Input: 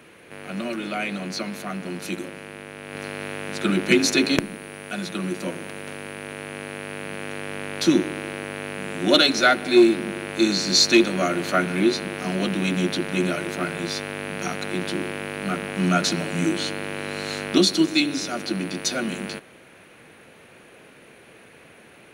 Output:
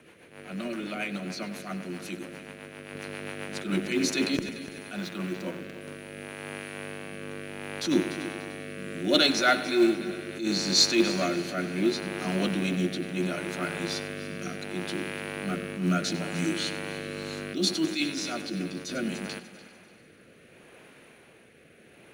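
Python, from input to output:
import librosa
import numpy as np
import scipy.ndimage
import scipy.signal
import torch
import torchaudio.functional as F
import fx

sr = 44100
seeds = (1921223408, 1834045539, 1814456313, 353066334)

p1 = fx.median_filter(x, sr, points=5, at=(4.96, 5.81))
p2 = fx.rotary_switch(p1, sr, hz=7.5, then_hz=0.7, switch_at_s=3.49)
p3 = fx.echo_heads(p2, sr, ms=98, heads='first and third', feedback_pct=53, wet_db=-17.0)
p4 = fx.quant_float(p3, sr, bits=2)
p5 = p3 + (p4 * 10.0 ** (-11.0 / 20.0))
p6 = fx.attack_slew(p5, sr, db_per_s=110.0)
y = p6 * 10.0 ** (-5.0 / 20.0)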